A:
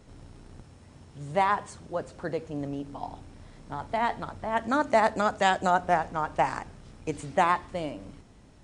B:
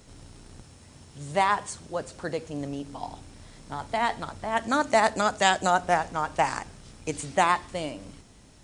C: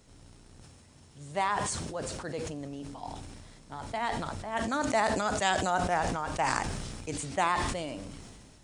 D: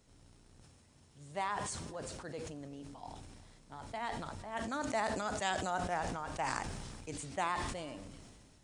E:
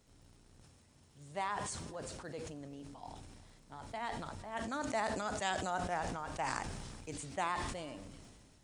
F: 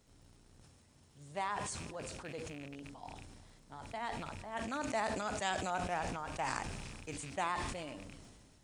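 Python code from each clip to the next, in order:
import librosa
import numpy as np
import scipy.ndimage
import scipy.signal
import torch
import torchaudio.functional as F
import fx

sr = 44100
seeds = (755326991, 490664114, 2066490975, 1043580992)

y1 = fx.high_shelf(x, sr, hz=3100.0, db=11.5)
y2 = fx.sustainer(y1, sr, db_per_s=28.0)
y2 = F.gain(torch.from_numpy(y2), -7.0).numpy()
y3 = y2 + 10.0 ** (-23.5 / 20.0) * np.pad(y2, (int(369 * sr / 1000.0), 0))[:len(y2)]
y3 = F.gain(torch.from_numpy(y3), -7.5).numpy()
y4 = fx.dmg_crackle(y3, sr, seeds[0], per_s=53.0, level_db=-57.0)
y4 = F.gain(torch.from_numpy(y4), -1.0).numpy()
y5 = fx.rattle_buzz(y4, sr, strikes_db=-48.0, level_db=-39.0)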